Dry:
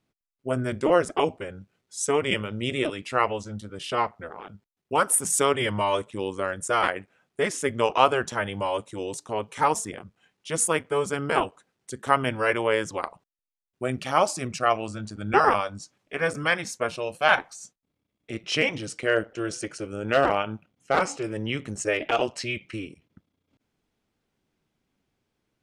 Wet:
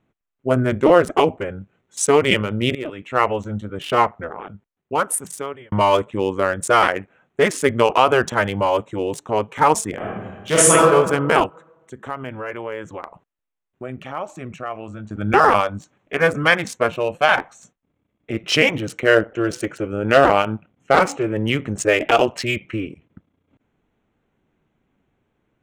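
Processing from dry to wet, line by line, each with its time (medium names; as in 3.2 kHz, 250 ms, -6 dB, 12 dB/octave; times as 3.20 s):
2.75–3.50 s: fade in, from -14.5 dB
4.20–5.72 s: fade out
9.96–10.73 s: reverb throw, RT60 1.3 s, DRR -8 dB
11.46–15.11 s: compression 2:1, threshold -45 dBFS
whole clip: local Wiener filter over 9 samples; loudness maximiser +10 dB; trim -1 dB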